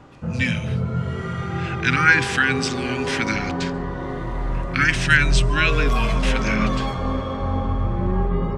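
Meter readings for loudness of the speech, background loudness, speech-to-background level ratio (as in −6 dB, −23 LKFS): −21.5 LKFS, −25.0 LKFS, 3.5 dB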